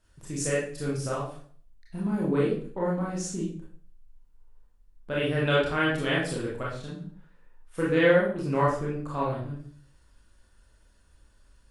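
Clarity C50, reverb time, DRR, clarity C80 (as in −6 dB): 2.5 dB, 0.45 s, −6.5 dB, 7.5 dB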